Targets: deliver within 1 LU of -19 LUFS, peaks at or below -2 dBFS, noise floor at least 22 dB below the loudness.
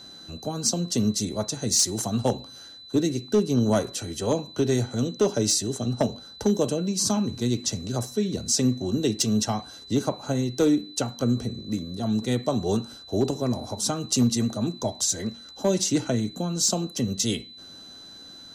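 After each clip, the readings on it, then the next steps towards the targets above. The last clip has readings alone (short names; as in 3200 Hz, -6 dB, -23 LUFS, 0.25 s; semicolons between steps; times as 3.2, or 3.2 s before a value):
clipped 0.2%; flat tops at -13.5 dBFS; steady tone 4000 Hz; tone level -43 dBFS; loudness -25.5 LUFS; peak -13.5 dBFS; loudness target -19.0 LUFS
-> clip repair -13.5 dBFS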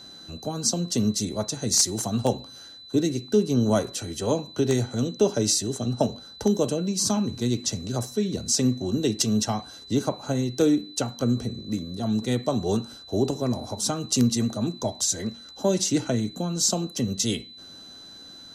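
clipped 0.0%; steady tone 4000 Hz; tone level -43 dBFS
-> notch 4000 Hz, Q 30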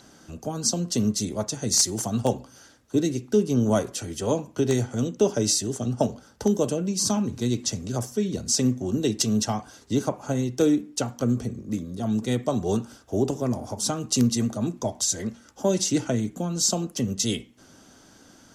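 steady tone none; loudness -25.5 LUFS; peak -5.0 dBFS; loudness target -19.0 LUFS
-> gain +6.5 dB; limiter -2 dBFS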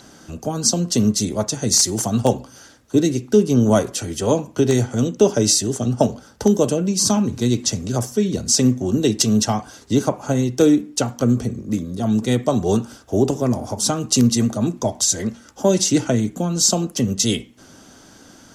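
loudness -19.0 LUFS; peak -2.0 dBFS; noise floor -47 dBFS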